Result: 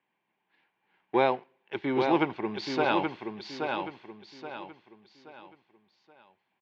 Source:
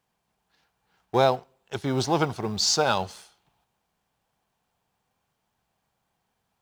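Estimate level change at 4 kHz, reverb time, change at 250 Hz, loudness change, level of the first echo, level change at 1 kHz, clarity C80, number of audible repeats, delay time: -10.5 dB, none, +1.0 dB, -5.0 dB, -5.0 dB, -2.0 dB, none, 4, 0.826 s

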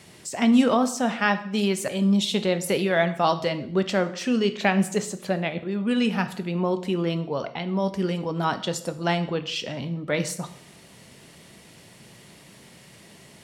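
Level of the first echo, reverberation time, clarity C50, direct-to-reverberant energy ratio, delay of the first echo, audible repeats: none, 0.60 s, 14.0 dB, 10.0 dB, none, none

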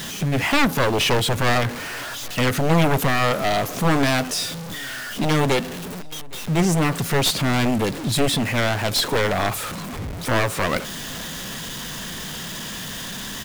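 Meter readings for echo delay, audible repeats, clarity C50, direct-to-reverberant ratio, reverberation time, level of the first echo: 0.813 s, 2, none, none, none, -24.0 dB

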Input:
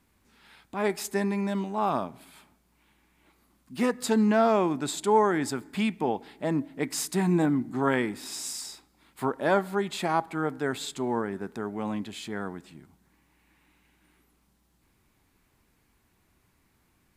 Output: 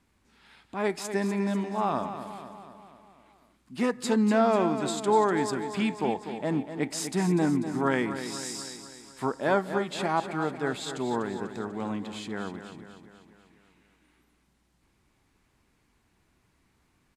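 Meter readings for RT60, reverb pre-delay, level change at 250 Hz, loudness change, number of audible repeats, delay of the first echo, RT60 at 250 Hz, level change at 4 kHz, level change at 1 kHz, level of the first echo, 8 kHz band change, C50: none, none, -0.5 dB, -0.5 dB, 5, 0.246 s, none, -0.5 dB, -0.5 dB, -10.0 dB, -2.0 dB, none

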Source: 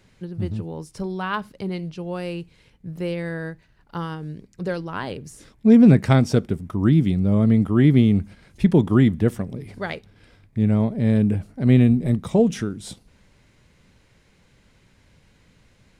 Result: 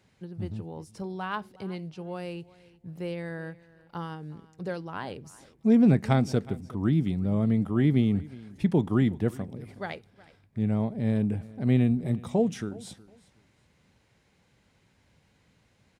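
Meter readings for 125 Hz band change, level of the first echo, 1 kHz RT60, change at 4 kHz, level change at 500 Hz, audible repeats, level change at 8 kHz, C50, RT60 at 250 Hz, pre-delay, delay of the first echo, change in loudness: -7.5 dB, -21.0 dB, none, -7.5 dB, -7.0 dB, 2, n/a, none, none, none, 0.367 s, -7.5 dB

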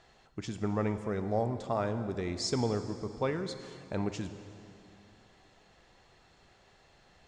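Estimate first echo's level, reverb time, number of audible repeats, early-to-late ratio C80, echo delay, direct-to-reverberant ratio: none, 2.6 s, none, 10.5 dB, none, 9.0 dB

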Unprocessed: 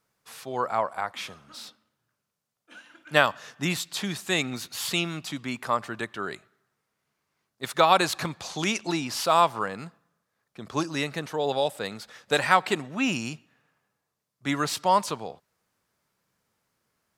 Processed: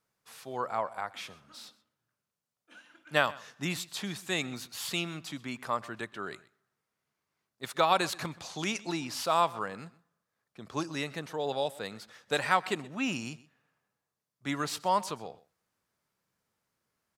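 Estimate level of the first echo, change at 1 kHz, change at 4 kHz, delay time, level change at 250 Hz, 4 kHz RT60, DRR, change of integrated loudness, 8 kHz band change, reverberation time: -21.0 dB, -6.0 dB, -6.0 dB, 0.127 s, -6.0 dB, none, none, -6.0 dB, -6.0 dB, none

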